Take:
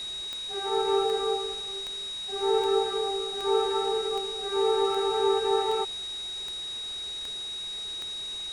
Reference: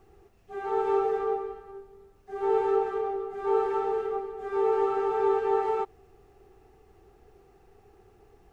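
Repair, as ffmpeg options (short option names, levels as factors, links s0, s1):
-af "adeclick=t=4,bandreject=f=3800:w=30,afwtdn=0.0056"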